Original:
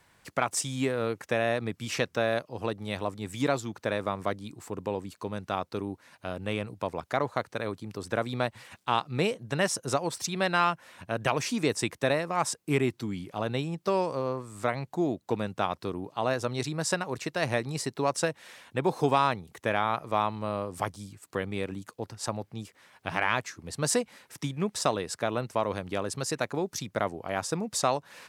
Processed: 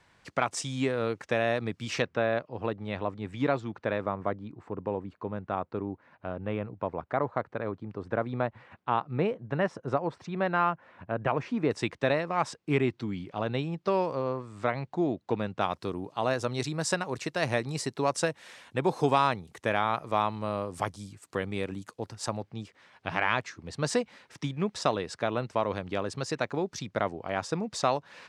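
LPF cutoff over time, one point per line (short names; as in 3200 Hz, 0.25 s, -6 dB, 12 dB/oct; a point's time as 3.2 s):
6100 Hz
from 2.02 s 2600 Hz
from 4.06 s 1600 Hz
from 11.71 s 3900 Hz
from 15.61 s 9500 Hz
from 22.41 s 5000 Hz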